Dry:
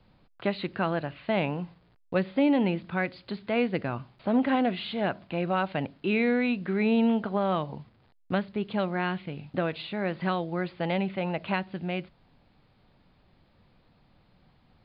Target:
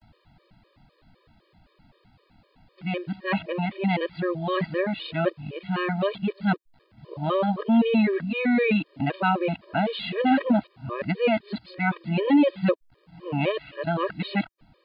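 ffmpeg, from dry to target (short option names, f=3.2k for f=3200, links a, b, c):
-af "areverse,afftfilt=real='re*gt(sin(2*PI*3.9*pts/sr)*(1-2*mod(floor(b*sr/1024/320),2)),0)':imag='im*gt(sin(2*PI*3.9*pts/sr)*(1-2*mod(floor(b*sr/1024/320),2)),0)':win_size=1024:overlap=0.75,volume=6.5dB"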